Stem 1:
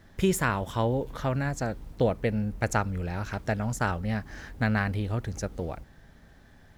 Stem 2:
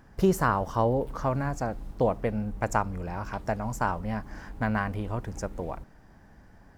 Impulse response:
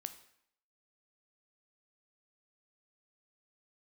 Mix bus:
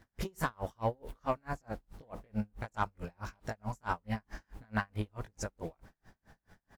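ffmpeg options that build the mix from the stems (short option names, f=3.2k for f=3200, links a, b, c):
-filter_complex "[0:a]acompressor=threshold=-26dB:ratio=6,volume=-6.5dB[a];[1:a]tiltshelf=f=820:g=-4,adelay=19,volume=-1.5dB[b];[a][b]amix=inputs=2:normalize=0,asoftclip=type=tanh:threshold=-16dB,aeval=exprs='val(0)*pow(10,-38*(0.5-0.5*cos(2*PI*4.6*n/s))/20)':c=same"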